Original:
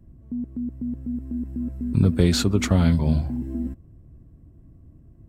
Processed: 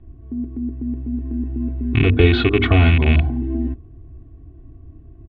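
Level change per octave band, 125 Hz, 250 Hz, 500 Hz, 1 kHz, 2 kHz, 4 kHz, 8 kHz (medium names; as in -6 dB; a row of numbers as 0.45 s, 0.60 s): +5.0 dB, +2.5 dB, +8.0 dB, +8.0 dB, +13.5 dB, +4.5 dB, under -30 dB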